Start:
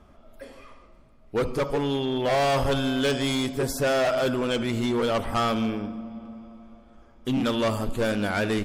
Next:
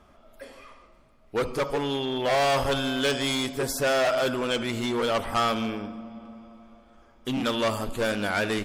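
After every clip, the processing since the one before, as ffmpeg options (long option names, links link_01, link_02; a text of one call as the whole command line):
ffmpeg -i in.wav -af "lowshelf=frequency=430:gain=-7.5,volume=2dB" out.wav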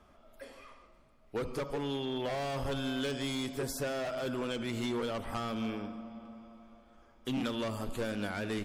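ffmpeg -i in.wav -filter_complex "[0:a]acrossover=split=360[link_01][link_02];[link_02]acompressor=threshold=-32dB:ratio=4[link_03];[link_01][link_03]amix=inputs=2:normalize=0,volume=-5dB" out.wav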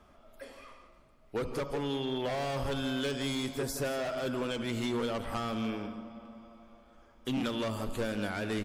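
ffmpeg -i in.wav -af "aecho=1:1:167:0.224,volume=1.5dB" out.wav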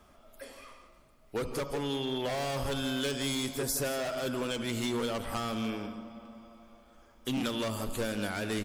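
ffmpeg -i in.wav -af "highshelf=frequency=5400:gain=10" out.wav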